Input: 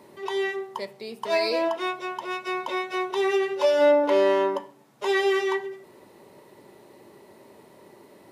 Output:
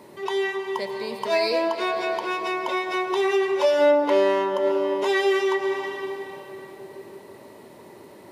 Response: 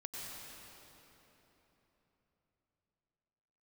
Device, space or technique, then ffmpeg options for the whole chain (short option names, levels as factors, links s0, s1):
ducked reverb: -filter_complex "[0:a]asplit=3[s0][s1][s2];[1:a]atrim=start_sample=2205[s3];[s1][s3]afir=irnorm=-1:irlink=0[s4];[s2]apad=whole_len=366596[s5];[s4][s5]sidechaincompress=threshold=0.0251:ratio=8:attack=27:release=156,volume=1.12[s6];[s0][s6]amix=inputs=2:normalize=0"